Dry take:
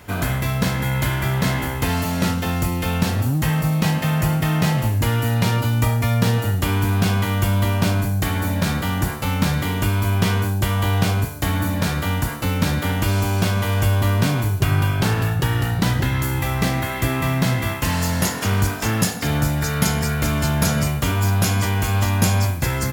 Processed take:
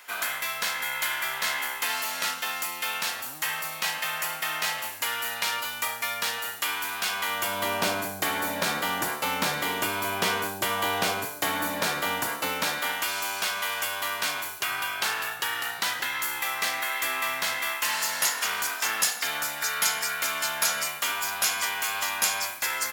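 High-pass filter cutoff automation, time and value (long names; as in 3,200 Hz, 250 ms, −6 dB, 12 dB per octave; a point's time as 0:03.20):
0:07.08 1,200 Hz
0:07.72 470 Hz
0:12.37 470 Hz
0:13.11 1,100 Hz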